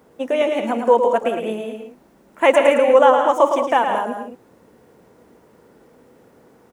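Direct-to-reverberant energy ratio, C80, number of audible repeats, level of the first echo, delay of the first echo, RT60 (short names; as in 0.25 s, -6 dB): none, none, 3, -6.5 dB, 0.11 s, none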